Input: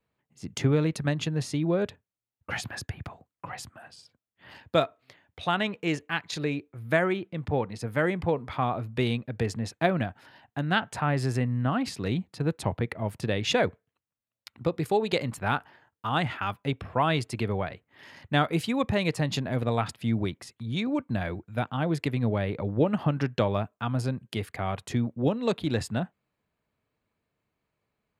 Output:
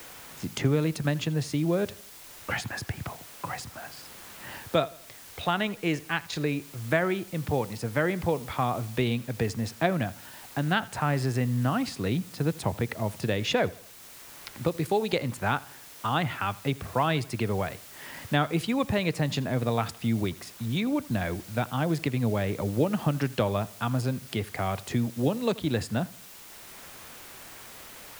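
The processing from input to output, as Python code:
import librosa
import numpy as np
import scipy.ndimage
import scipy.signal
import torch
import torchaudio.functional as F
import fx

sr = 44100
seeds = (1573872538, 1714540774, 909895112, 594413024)

p1 = fx.dmg_noise_colour(x, sr, seeds[0], colour='white', level_db=-51.0)
p2 = p1 + fx.echo_feedback(p1, sr, ms=82, feedback_pct=40, wet_db=-22.0, dry=0)
y = fx.band_squash(p2, sr, depth_pct=40)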